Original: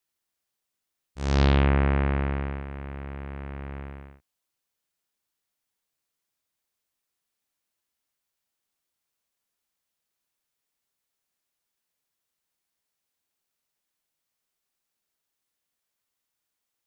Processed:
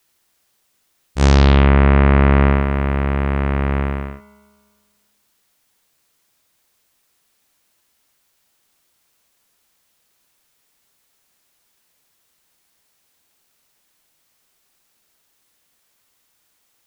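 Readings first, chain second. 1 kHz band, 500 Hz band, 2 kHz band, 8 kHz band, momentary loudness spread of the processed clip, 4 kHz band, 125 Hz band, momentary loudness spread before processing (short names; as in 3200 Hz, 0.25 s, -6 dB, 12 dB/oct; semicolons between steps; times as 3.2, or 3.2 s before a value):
+12.0 dB, +12.0 dB, +11.5 dB, n/a, 12 LU, +9.5 dB, +11.5 dB, 17 LU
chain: spring tank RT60 1.7 s, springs 42/48 ms, chirp 70 ms, DRR 18 dB; maximiser +19 dB; gain -1 dB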